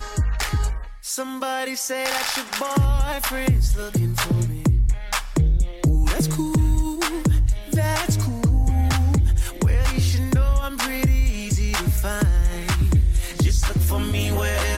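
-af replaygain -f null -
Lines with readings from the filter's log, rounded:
track_gain = +5.4 dB
track_peak = 0.239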